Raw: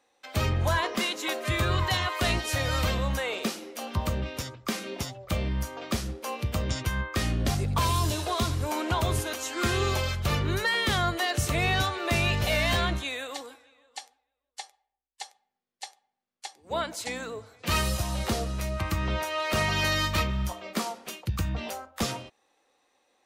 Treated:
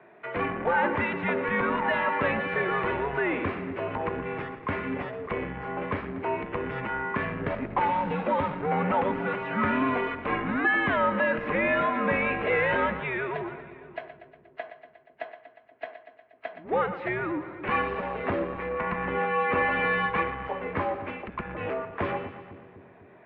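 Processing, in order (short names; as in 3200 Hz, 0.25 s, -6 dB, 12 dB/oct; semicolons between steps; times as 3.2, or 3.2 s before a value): split-band echo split 510 Hz, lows 0.25 s, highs 0.119 s, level -15 dB; power-law curve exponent 0.7; mistuned SSB -130 Hz 280–2400 Hz; gain +1.5 dB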